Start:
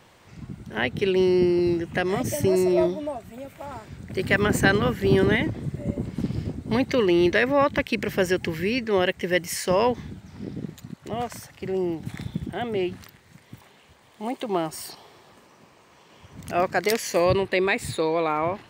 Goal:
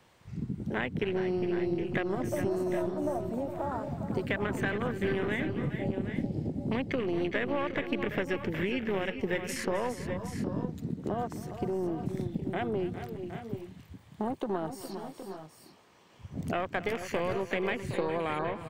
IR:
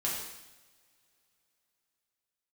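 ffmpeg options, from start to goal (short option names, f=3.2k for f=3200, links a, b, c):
-filter_complex "[0:a]aeval=exprs='0.596*(cos(1*acos(clip(val(0)/0.596,-1,1)))-cos(1*PI/2))+0.0376*(cos(6*acos(clip(val(0)/0.596,-1,1)))-cos(6*PI/2))':c=same,acompressor=threshold=-36dB:ratio=2,afwtdn=0.01,acrossover=split=130|2200[a][b][c];[a]acompressor=threshold=-54dB:ratio=4[d];[b]acompressor=threshold=-39dB:ratio=4[e];[c]acompressor=threshold=-49dB:ratio=4[f];[d][e][f]amix=inputs=3:normalize=0,asplit=2[g][h];[h]aecho=0:1:263|408|419|766|792:0.141|0.224|0.237|0.266|0.178[i];[g][i]amix=inputs=2:normalize=0,volume=8.5dB"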